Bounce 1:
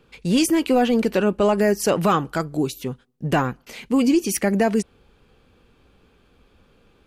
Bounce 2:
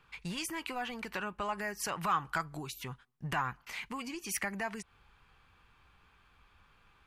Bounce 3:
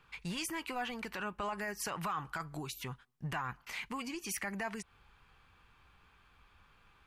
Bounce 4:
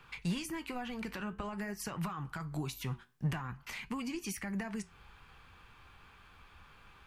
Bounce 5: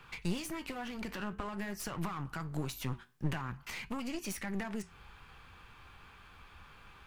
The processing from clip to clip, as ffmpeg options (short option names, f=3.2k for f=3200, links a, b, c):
-af "acompressor=threshold=-23dB:ratio=6,equalizer=f=250:t=o:w=1:g=-9,equalizer=f=500:t=o:w=1:g=-11,equalizer=f=1k:t=o:w=1:g=9,equalizer=f=2k:t=o:w=1:g=6,volume=-7.5dB"
-af "alimiter=level_in=4.5dB:limit=-24dB:level=0:latency=1:release=15,volume=-4.5dB"
-filter_complex "[0:a]acrossover=split=280[a][b];[b]acompressor=threshold=-49dB:ratio=4[c];[a][c]amix=inputs=2:normalize=0,flanger=delay=7.8:depth=7.4:regen=-73:speed=0.5:shape=triangular,volume=11dB"
-af "aeval=exprs='clip(val(0),-1,0.00501)':c=same,volume=2.5dB"